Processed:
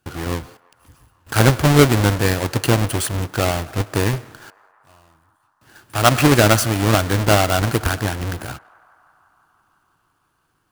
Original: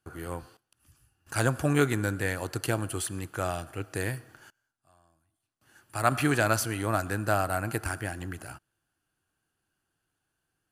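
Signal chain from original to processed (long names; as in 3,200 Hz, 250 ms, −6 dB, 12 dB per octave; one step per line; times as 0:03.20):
each half-wave held at its own peak
on a send: feedback echo with a band-pass in the loop 168 ms, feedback 83%, band-pass 1,100 Hz, level −23 dB
on the sum: level +7 dB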